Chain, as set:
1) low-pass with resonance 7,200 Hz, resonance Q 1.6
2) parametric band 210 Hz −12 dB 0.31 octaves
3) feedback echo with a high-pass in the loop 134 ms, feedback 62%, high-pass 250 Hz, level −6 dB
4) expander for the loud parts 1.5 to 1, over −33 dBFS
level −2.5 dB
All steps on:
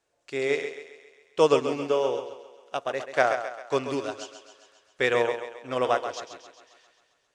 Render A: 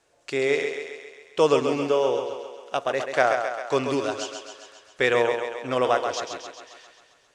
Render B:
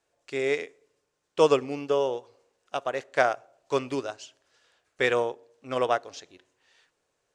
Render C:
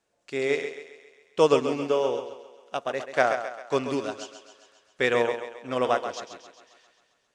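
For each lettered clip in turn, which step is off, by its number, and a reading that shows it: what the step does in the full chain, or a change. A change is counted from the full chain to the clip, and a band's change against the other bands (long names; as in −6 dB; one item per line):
4, change in integrated loudness +2.5 LU
3, change in momentary loudness spread −2 LU
2, 250 Hz band +2.0 dB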